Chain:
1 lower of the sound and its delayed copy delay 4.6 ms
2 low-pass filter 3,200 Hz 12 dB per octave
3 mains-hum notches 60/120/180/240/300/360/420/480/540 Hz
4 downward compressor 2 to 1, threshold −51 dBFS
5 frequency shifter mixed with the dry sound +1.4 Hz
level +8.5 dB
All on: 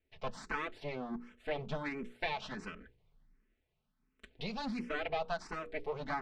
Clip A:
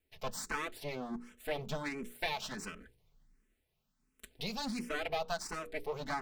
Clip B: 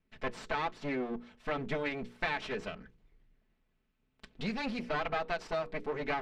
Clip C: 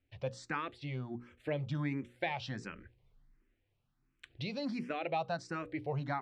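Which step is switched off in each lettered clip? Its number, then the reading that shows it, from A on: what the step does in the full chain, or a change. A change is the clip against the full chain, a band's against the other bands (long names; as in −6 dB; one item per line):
2, 8 kHz band +14.0 dB
5, change in integrated loudness +3.5 LU
1, 125 Hz band +8.5 dB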